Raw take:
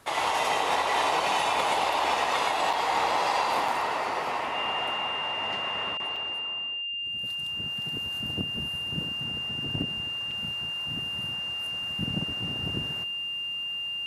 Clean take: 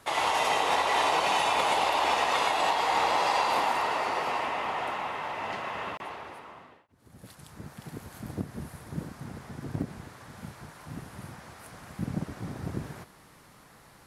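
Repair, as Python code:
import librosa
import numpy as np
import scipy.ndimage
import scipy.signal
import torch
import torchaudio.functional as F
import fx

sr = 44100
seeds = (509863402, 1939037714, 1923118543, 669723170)

y = fx.notch(x, sr, hz=2800.0, q=30.0)
y = fx.fix_interpolate(y, sr, at_s=(2.73, 3.68, 6.16, 10.31), length_ms=4.3)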